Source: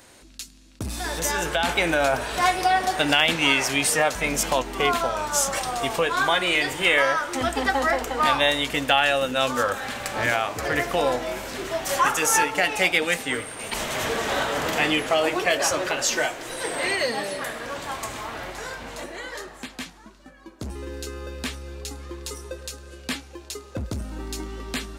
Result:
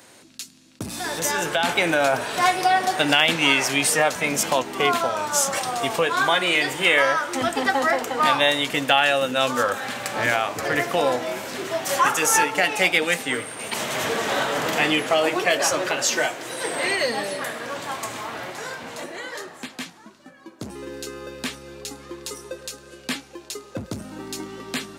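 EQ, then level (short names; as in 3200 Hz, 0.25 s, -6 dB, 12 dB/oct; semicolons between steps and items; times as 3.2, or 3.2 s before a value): HPF 110 Hz 24 dB/oct; +1.5 dB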